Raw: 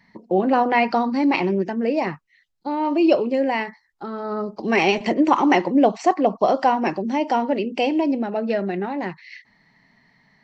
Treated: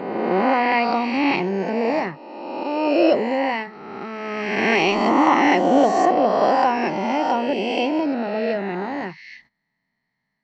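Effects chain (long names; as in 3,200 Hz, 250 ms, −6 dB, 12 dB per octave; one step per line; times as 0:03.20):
peak hold with a rise ahead of every peak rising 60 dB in 1.73 s
noise gate −47 dBFS, range −18 dB
level −3.5 dB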